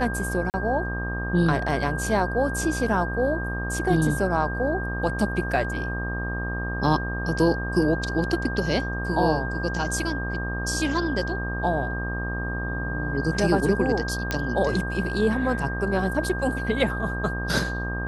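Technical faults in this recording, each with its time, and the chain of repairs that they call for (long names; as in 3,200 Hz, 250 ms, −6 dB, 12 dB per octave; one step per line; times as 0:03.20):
mains buzz 60 Hz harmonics 21 −30 dBFS
whistle 1,600 Hz −31 dBFS
0:00.50–0:00.54: drop-out 39 ms
0:14.31: click −10 dBFS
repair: click removal
notch filter 1,600 Hz, Q 30
hum removal 60 Hz, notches 21
repair the gap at 0:00.50, 39 ms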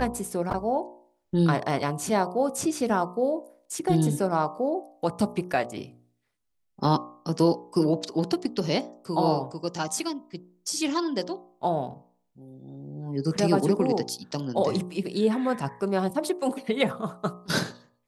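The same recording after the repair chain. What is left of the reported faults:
none of them is left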